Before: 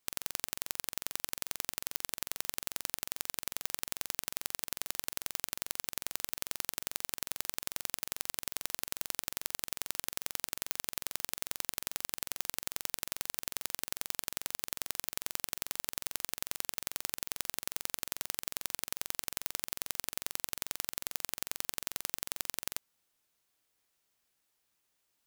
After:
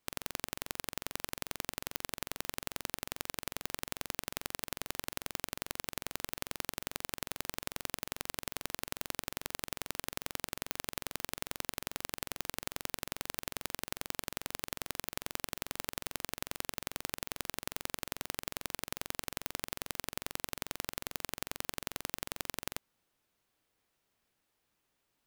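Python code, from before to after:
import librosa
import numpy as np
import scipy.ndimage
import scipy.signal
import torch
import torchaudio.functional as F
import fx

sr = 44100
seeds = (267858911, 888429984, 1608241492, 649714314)

y = fx.curve_eq(x, sr, hz=(250.0, 2800.0, 7000.0), db=(0, -6, -11))
y = y * librosa.db_to_amplitude(6.5)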